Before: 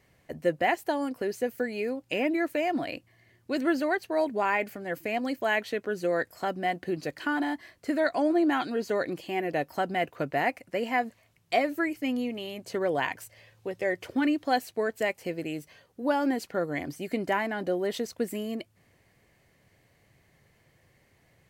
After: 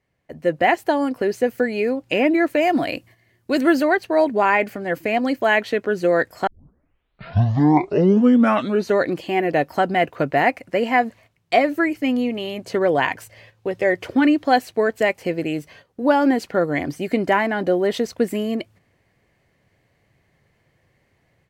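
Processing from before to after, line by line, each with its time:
0:02.61–0:03.83: high-shelf EQ 7,100 Hz +11.5 dB
0:06.47: tape start 2.52 s
whole clip: noise gate −55 dBFS, range −9 dB; high-shelf EQ 5,700 Hz −9 dB; automatic gain control gain up to 10 dB

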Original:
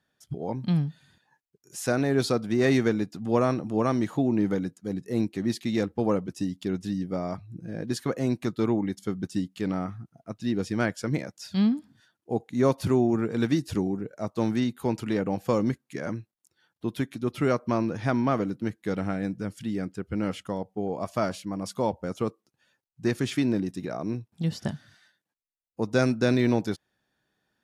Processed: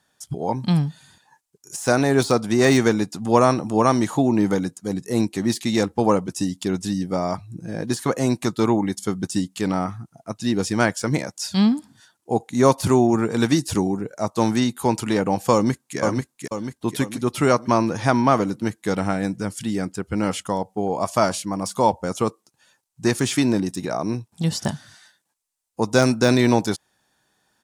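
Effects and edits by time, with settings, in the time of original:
0:15.53–0:15.98: delay throw 490 ms, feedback 50%, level −3.5 dB
whole clip: parametric band 8,400 Hz +13.5 dB 1.6 octaves; de-essing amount 55%; parametric band 920 Hz +7.5 dB 0.83 octaves; level +5 dB

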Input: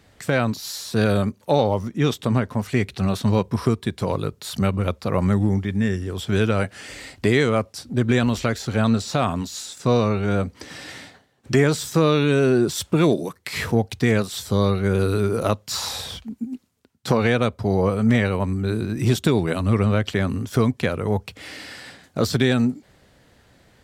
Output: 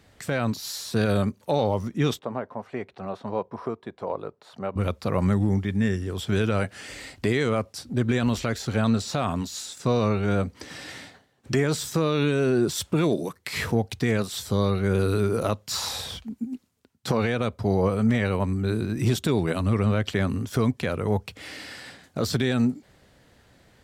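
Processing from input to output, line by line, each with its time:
0:02.19–0:04.76: resonant band-pass 710 Hz, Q 1.3
whole clip: de-essing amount 35%; brickwall limiter −11 dBFS; level −2 dB

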